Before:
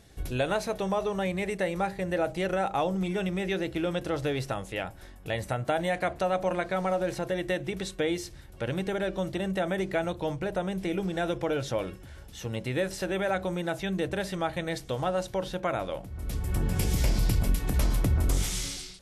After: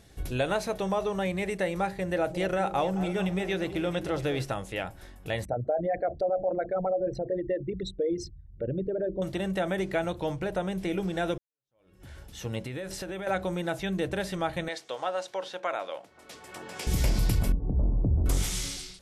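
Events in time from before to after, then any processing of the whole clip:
0:02.07–0:04.45: delay that swaps between a low-pass and a high-pass 218 ms, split 820 Hz, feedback 61%, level −10 dB
0:05.45–0:09.22: spectral envelope exaggerated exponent 3
0:11.38–0:12.05: fade in exponential
0:12.62–0:13.27: downward compressor, threshold −32 dBFS
0:14.68–0:16.87: band-pass filter 540–7,200 Hz
0:17.52–0:18.26: Bessel low-pass filter 510 Hz, order 6

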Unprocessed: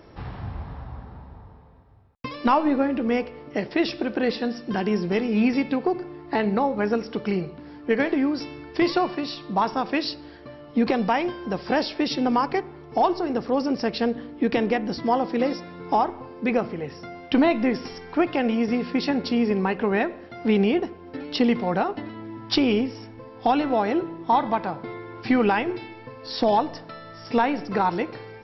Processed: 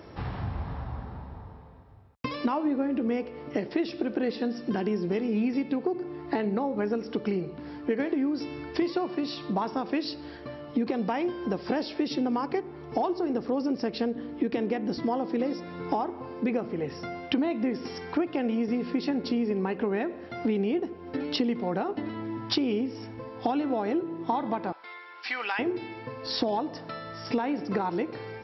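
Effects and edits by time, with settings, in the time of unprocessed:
0:24.72–0:25.59: high-pass filter 1,400 Hz
whole clip: high-pass filter 44 Hz; dynamic equaliser 320 Hz, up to +7 dB, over −35 dBFS, Q 0.89; downward compressor 4 to 1, threshold −29 dBFS; level +2 dB

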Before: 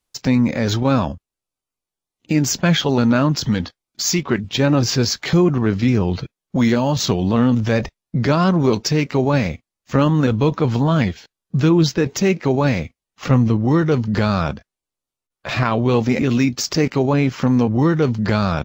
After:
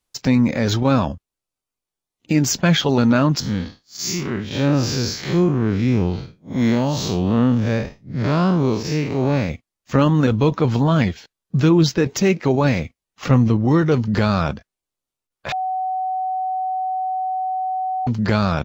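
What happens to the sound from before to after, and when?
0:03.40–0:09.49: spectrum smeared in time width 137 ms
0:15.52–0:18.07: beep over 750 Hz −20 dBFS

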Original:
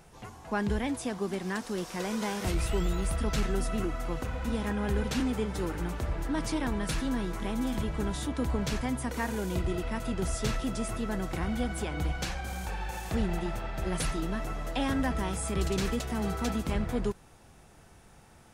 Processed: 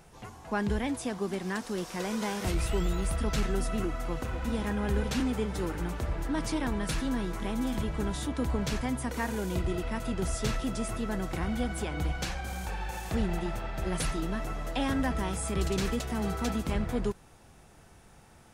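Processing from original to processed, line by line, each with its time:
0:03.75–0:04.67: delay throw 490 ms, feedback 45%, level −14 dB

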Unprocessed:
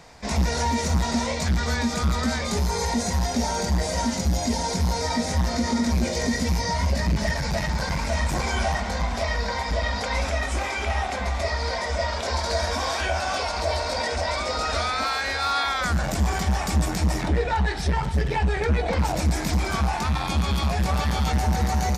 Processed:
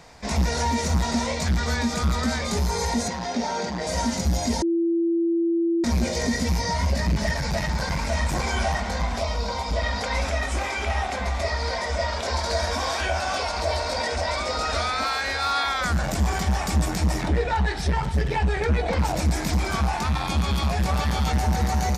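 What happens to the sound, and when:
0:03.08–0:03.87: band-pass filter 190–4,700 Hz
0:04.62–0:05.84: beep over 336 Hz −19 dBFS
0:09.20–0:09.76: parametric band 1,800 Hz −14.5 dB 0.34 octaves

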